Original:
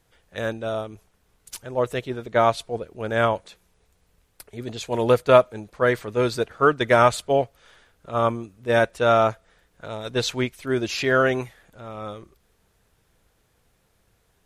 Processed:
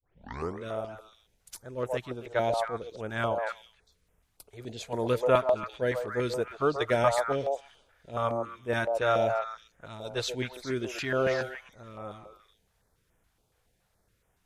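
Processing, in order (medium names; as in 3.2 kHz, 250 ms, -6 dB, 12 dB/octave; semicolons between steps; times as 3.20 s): tape start-up on the opening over 0.60 s; repeats whose band climbs or falls 134 ms, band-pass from 660 Hz, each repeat 1.4 oct, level -1.5 dB; step-sequenced notch 7.1 Hz 210–4300 Hz; trim -7 dB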